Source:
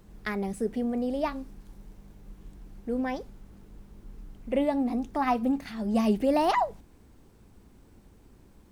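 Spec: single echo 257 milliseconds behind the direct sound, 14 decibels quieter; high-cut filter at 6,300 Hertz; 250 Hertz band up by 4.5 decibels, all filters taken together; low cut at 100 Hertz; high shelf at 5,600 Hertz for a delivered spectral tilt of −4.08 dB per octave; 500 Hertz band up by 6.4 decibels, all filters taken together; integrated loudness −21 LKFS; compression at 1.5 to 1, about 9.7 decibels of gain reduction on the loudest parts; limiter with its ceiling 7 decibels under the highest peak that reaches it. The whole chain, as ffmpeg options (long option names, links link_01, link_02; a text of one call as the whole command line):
ffmpeg -i in.wav -af "highpass=100,lowpass=6300,equalizer=frequency=250:width_type=o:gain=3.5,equalizer=frequency=500:width_type=o:gain=7,highshelf=frequency=5600:gain=-4,acompressor=threshold=-43dB:ratio=1.5,alimiter=level_in=1.5dB:limit=-24dB:level=0:latency=1,volume=-1.5dB,aecho=1:1:257:0.2,volume=13.5dB" out.wav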